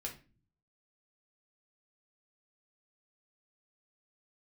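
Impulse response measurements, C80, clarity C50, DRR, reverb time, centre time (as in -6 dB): 16.5 dB, 10.5 dB, -1.5 dB, 0.35 s, 15 ms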